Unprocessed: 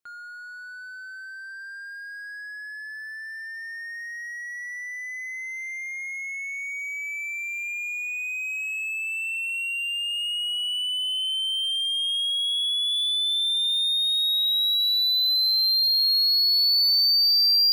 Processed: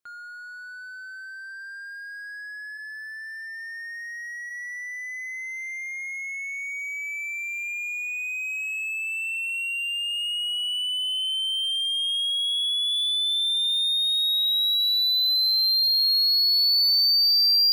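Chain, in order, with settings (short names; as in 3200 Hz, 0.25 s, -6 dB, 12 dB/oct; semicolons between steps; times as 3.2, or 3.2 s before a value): 2.77–4.49 HPF 1300 Hz -> 1400 Hz 24 dB/oct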